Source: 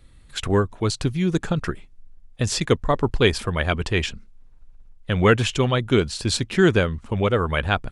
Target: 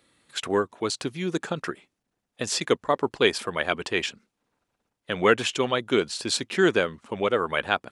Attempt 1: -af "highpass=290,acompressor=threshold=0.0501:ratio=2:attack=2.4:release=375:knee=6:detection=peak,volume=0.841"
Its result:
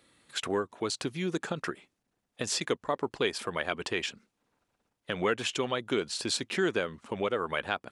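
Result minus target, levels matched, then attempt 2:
compression: peak gain reduction +10 dB
-af "highpass=290,volume=0.841"

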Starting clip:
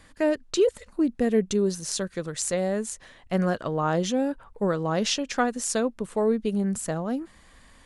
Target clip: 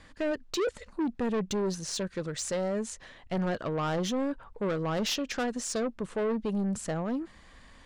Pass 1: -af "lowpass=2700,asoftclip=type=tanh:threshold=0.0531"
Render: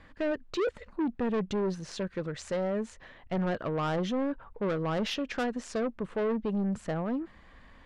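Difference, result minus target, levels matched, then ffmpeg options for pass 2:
8 kHz band -11.5 dB
-af "lowpass=6300,asoftclip=type=tanh:threshold=0.0531"

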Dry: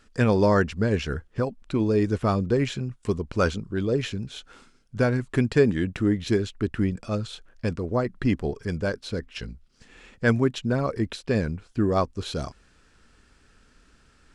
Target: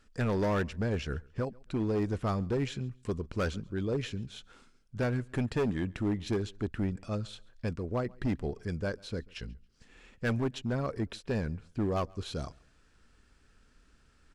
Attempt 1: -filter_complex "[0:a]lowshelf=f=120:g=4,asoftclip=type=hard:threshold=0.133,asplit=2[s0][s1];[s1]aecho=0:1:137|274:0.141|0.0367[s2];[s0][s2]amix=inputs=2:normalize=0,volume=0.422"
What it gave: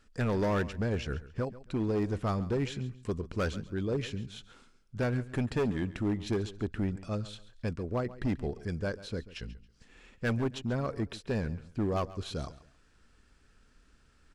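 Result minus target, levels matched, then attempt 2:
echo-to-direct +9 dB
-filter_complex "[0:a]lowshelf=f=120:g=4,asoftclip=type=hard:threshold=0.133,asplit=2[s0][s1];[s1]aecho=0:1:137|274:0.0501|0.013[s2];[s0][s2]amix=inputs=2:normalize=0,volume=0.422"

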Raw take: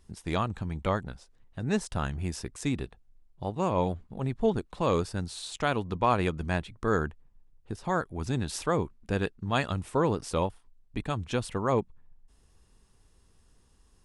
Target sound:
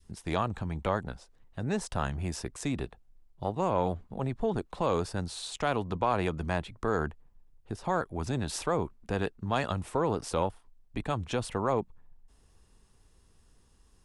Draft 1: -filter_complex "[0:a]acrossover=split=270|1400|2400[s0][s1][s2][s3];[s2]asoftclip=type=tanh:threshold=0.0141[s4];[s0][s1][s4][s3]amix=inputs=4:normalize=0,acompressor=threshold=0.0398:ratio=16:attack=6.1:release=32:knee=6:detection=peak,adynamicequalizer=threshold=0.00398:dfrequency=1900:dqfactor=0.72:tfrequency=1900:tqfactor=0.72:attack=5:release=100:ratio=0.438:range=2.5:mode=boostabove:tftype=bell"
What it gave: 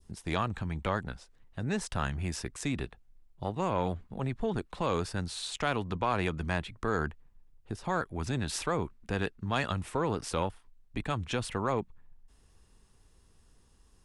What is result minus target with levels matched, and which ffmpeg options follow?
saturation: distortion +7 dB; 2 kHz band +3.5 dB
-filter_complex "[0:a]acrossover=split=270|1400|2400[s0][s1][s2][s3];[s2]asoftclip=type=tanh:threshold=0.0299[s4];[s0][s1][s4][s3]amix=inputs=4:normalize=0,acompressor=threshold=0.0398:ratio=16:attack=6.1:release=32:knee=6:detection=peak,adynamicequalizer=threshold=0.00398:dfrequency=720:dqfactor=0.72:tfrequency=720:tqfactor=0.72:attack=5:release=100:ratio=0.438:range=2.5:mode=boostabove:tftype=bell"

